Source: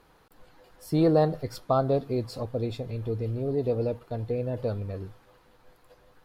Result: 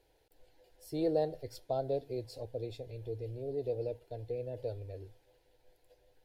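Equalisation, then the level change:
phaser with its sweep stopped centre 490 Hz, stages 4
−7.5 dB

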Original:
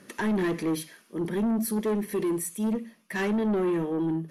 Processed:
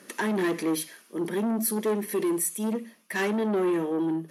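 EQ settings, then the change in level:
high-pass filter 240 Hz 12 dB per octave
high-shelf EQ 6,800 Hz +5.5 dB
+2.0 dB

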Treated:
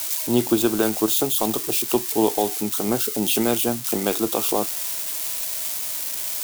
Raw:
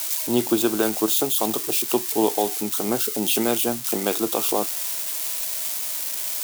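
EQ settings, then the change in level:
low-shelf EQ 120 Hz +10.5 dB
0.0 dB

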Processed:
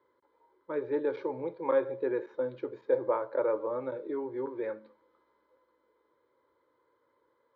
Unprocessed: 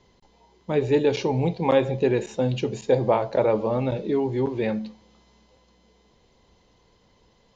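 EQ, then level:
high-frequency loss of the air 79 metres
loudspeaker in its box 390–2,600 Hz, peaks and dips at 420 Hz −8 dB, 690 Hz −5 dB, 1,100 Hz −4 dB, 1,900 Hz −8 dB
phaser with its sweep stopped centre 740 Hz, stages 6
0.0 dB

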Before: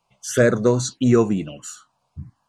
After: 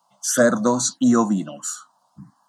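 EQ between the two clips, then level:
high-pass filter 210 Hz 24 dB per octave
dynamic equaliser 2,000 Hz, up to −4 dB, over −34 dBFS, Q 0.74
phaser with its sweep stopped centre 1,000 Hz, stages 4
+8.5 dB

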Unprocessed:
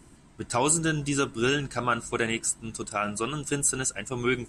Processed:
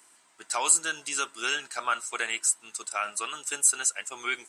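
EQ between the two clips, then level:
high-pass filter 880 Hz 12 dB per octave
high-shelf EQ 7,700 Hz +6.5 dB
0.0 dB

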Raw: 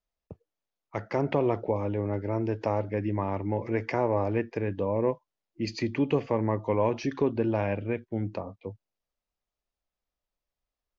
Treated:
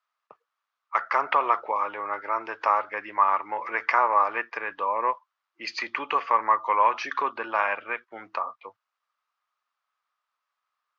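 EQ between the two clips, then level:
high-pass with resonance 1,200 Hz, resonance Q 4.9
high-frequency loss of the air 120 metres
+8.0 dB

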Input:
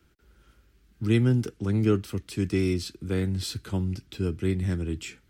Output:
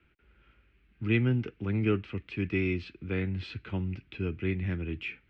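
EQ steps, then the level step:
transistor ladder low-pass 2,800 Hz, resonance 60%
+6.0 dB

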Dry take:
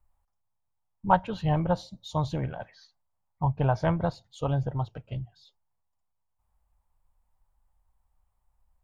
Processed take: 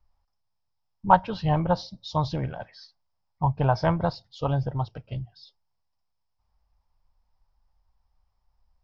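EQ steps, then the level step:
dynamic equaliser 1,000 Hz, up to +4 dB, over −36 dBFS, Q 1.3
low-pass with resonance 5,200 Hz, resonance Q 8.5
high-frequency loss of the air 140 metres
+1.5 dB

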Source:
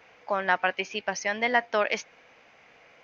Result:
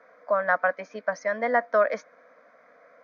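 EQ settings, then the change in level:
resonant band-pass 710 Hz, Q 0.76
phaser with its sweep stopped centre 560 Hz, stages 8
+7.0 dB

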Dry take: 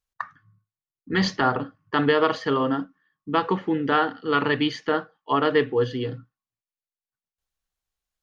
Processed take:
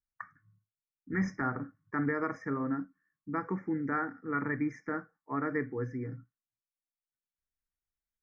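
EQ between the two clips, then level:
linear-phase brick-wall band-stop 2,400–5,000 Hz
flat-topped bell 660 Hz −8.5 dB
high-shelf EQ 3,000 Hz −10.5 dB
−7.0 dB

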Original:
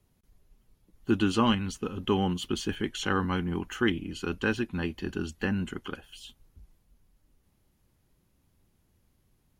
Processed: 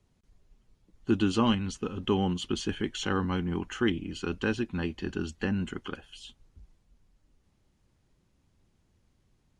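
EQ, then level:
low-pass filter 8,600 Hz 24 dB per octave
dynamic equaliser 1,600 Hz, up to −4 dB, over −37 dBFS, Q 0.76
0.0 dB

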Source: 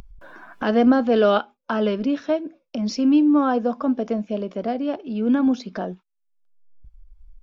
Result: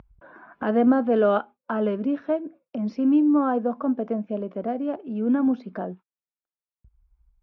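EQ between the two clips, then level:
high-pass filter 64 Hz 12 dB per octave
low-pass filter 1,700 Hz 12 dB per octave
−2.5 dB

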